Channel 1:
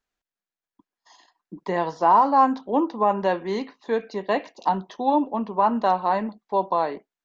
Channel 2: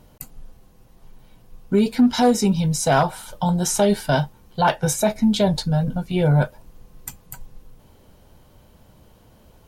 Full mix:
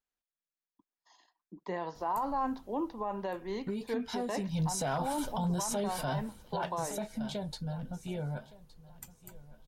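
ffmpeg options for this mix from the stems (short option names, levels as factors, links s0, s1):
-filter_complex "[0:a]volume=0.299[s0];[1:a]acompressor=threshold=0.112:ratio=6,adelay=1950,volume=1.78,afade=t=out:st=2.64:d=0.55:silence=0.446684,afade=t=in:st=4.47:d=0.41:silence=0.266073,afade=t=out:st=6.13:d=0.63:silence=0.237137,asplit=2[s1][s2];[s2]volume=0.1,aecho=0:1:1166|2332|3498|4664:1|0.23|0.0529|0.0122[s3];[s0][s1][s3]amix=inputs=3:normalize=0,alimiter=level_in=1.12:limit=0.0631:level=0:latency=1:release=29,volume=0.891"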